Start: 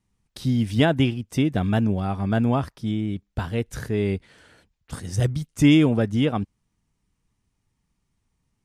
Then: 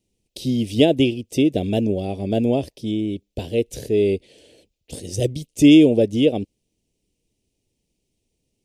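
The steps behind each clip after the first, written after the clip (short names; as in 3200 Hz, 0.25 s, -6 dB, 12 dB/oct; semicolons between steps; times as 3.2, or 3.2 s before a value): EQ curve 170 Hz 0 dB, 240 Hz +5 dB, 350 Hz +12 dB, 570 Hz +12 dB, 1300 Hz -22 dB, 2600 Hz +8 dB; gain -3.5 dB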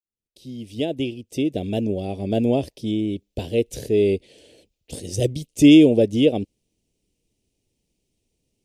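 opening faded in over 2.60 s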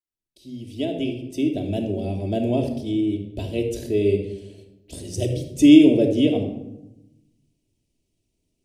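shoebox room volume 3100 m³, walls furnished, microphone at 2.9 m; gain -4.5 dB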